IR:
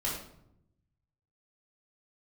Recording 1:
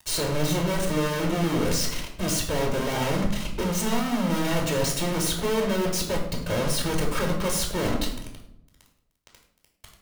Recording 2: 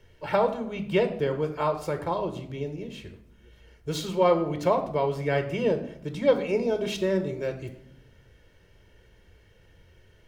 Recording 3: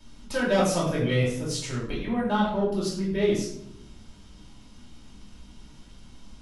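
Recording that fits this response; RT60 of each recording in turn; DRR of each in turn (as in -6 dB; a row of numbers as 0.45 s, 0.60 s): 3; 0.75 s, 0.80 s, 0.75 s; 0.5 dB, 6.5 dB, -6.0 dB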